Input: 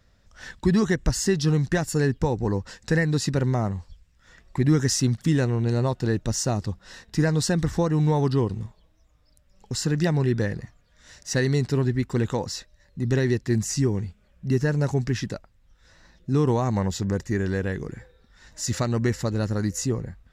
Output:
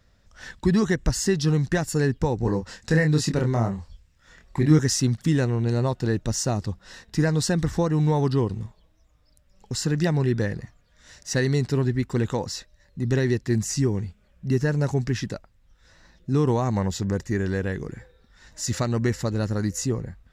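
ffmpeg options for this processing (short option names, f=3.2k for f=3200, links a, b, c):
-filter_complex "[0:a]asettb=1/sr,asplit=3[a][b][c];[a]atrim=end=2.384[d];[b]atrim=start=2.38:end=4.79,asetpts=PTS-STARTPTS,afade=t=in:d=0.004:c=qsin,afade=t=out:st=2.406:d=0.004:c=qsin,asplit=2[e][f];[f]adelay=26,volume=-5dB[g];[e][g]amix=inputs=2:normalize=0,atrim=end_sample=106281[h];[c]atrim=start=4.786[i];[d][h]acrossfade=d=0.004:c1=hsin:c2=qsin[j];[j][i]acrossfade=d=0.004:c1=qsin:c2=hsin"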